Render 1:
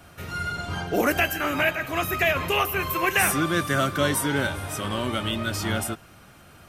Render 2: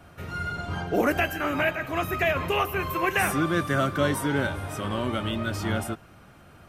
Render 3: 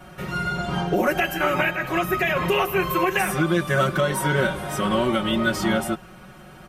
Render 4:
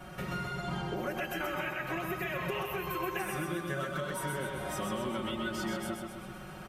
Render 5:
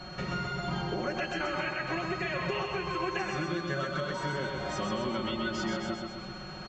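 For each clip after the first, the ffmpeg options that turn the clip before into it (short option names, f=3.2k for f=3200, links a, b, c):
-af "highshelf=f=2.6k:g=-9"
-af "aecho=1:1:5.4:0.99,alimiter=limit=-15.5dB:level=0:latency=1:release=244,volume=4.5dB"
-af "acompressor=threshold=-32dB:ratio=5,aecho=1:1:129|258|387|516|645|774|903|1032:0.596|0.334|0.187|0.105|0.0586|0.0328|0.0184|0.0103,volume=-3dB"
-af "aresample=16000,aresample=44100,aeval=exprs='val(0)+0.00316*sin(2*PI*4300*n/s)':c=same,volume=2.5dB"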